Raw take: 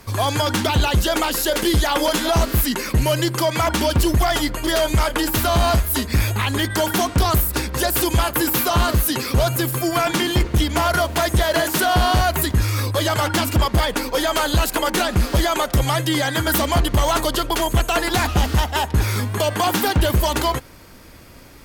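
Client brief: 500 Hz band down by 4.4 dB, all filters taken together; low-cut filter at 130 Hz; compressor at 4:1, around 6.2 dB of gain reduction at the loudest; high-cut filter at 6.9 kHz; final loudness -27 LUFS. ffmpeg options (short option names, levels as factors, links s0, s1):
-af "highpass=130,lowpass=6900,equalizer=f=500:t=o:g=-6.5,acompressor=threshold=0.0562:ratio=4,volume=1.12"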